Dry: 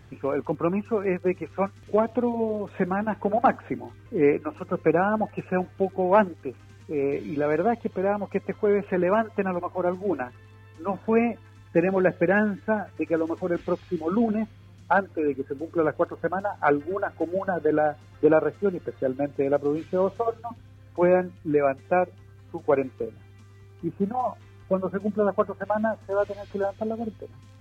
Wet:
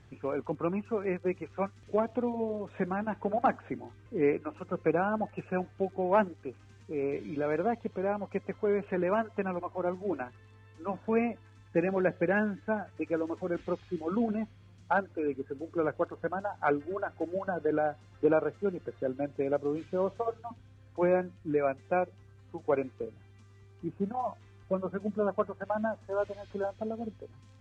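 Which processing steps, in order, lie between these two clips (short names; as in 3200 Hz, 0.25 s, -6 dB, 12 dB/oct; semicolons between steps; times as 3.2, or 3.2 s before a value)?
Chebyshev low-pass 8200 Hz, order 2; gain -5.5 dB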